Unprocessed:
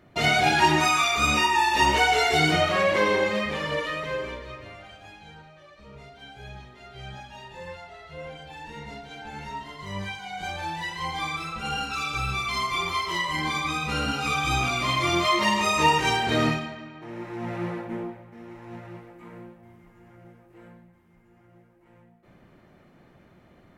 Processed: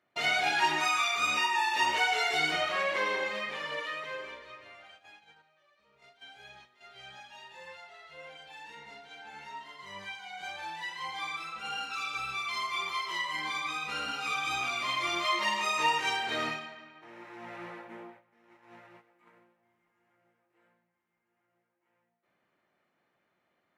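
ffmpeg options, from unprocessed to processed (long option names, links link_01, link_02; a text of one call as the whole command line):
ffmpeg -i in.wav -filter_complex "[0:a]asettb=1/sr,asplit=3[link_01][link_02][link_03];[link_01]atrim=end=5.994[link_04];[link_02]atrim=start=5.99:end=8.75,asetpts=PTS-STARTPTS,afade=type=in:duration=0.004:curve=qsin,afade=type=out:start_time=2.756:duration=0.004:curve=qsin,highshelf=frequency=2800:gain=4[link_05];[link_03]atrim=start=8.746[link_06];[link_04][link_05]acrossfade=duration=0.004:curve1=hsin:curve2=qsin[link_07];[link_07][link_06]acrossfade=duration=0.004:curve1=qsin:curve2=hsin,highpass=frequency=1400:poles=1,highshelf=frequency=4300:gain=-8,agate=range=-9dB:threshold=-52dB:ratio=16:detection=peak,volume=-2dB" out.wav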